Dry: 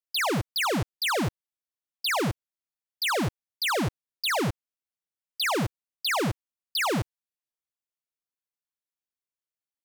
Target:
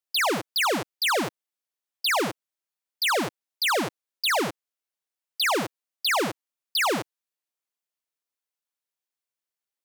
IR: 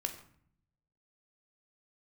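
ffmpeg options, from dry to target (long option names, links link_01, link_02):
-af "highpass=300,volume=3dB"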